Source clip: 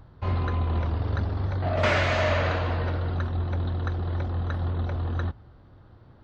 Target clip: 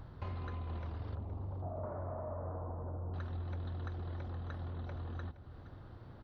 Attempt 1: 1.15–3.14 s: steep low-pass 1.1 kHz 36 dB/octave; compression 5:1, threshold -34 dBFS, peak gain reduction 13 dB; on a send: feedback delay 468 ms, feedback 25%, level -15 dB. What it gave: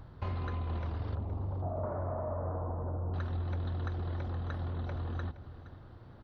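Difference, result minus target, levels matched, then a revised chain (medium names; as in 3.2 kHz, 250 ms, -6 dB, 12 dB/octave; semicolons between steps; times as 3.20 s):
compression: peak gain reduction -5.5 dB
1.15–3.14 s: steep low-pass 1.1 kHz 36 dB/octave; compression 5:1, threshold -41 dBFS, peak gain reduction 18.5 dB; on a send: feedback delay 468 ms, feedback 25%, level -15 dB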